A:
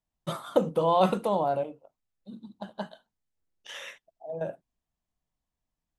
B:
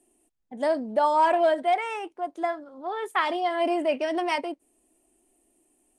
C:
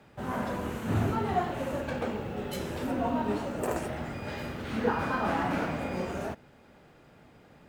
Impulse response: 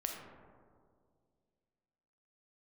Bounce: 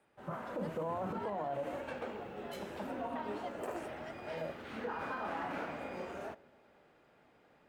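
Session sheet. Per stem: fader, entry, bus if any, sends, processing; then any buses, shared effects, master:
-6.0 dB, 0.00 s, no send, steep low-pass 1500 Hz; limiter -18.5 dBFS, peak gain reduction 8.5 dB; three-band expander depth 40%
-18.0 dB, 0.00 s, no send, chopper 3.2 Hz, depth 65%, duty 15%
-14.0 dB, 0.00 s, send -17.5 dB, tone controls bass -11 dB, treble -6 dB; AGC gain up to 6 dB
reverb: on, RT60 2.1 s, pre-delay 4 ms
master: limiter -30 dBFS, peak gain reduction 11 dB

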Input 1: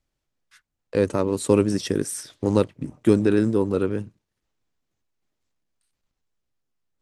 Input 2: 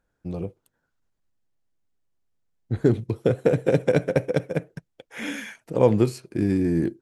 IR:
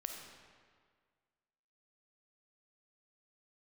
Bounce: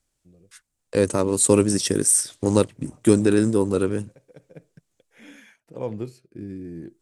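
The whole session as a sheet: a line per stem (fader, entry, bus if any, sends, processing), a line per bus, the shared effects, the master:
+1.0 dB, 0.00 s, muted 5.39–6.47, no send, bell 8700 Hz +14 dB 1.1 oct
-11.5 dB, 0.00 s, no send, rotary speaker horn 0.65 Hz; auto duck -23 dB, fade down 0.80 s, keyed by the first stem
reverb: off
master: dry

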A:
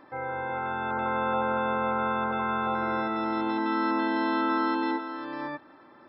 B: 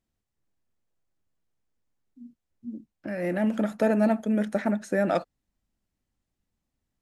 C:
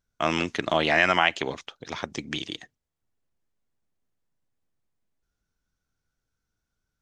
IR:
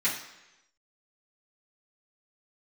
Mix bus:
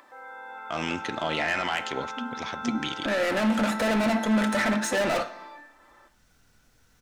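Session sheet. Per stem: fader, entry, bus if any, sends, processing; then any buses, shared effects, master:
-14.0 dB, 0.00 s, bus A, send -3.5 dB, HPF 510 Hz 12 dB/oct
-8.0 dB, 0.00 s, no bus, send -14 dB, overdrive pedal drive 33 dB, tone 6500 Hz, clips at -11.5 dBFS
-0.5 dB, 0.50 s, bus A, send -21.5 dB, soft clip -12.5 dBFS, distortion -13 dB
bus A: 0.0 dB, upward compressor, threshold -45 dBFS; limiter -19 dBFS, peak gain reduction 6 dB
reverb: on, RT60 1.0 s, pre-delay 3 ms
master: dry

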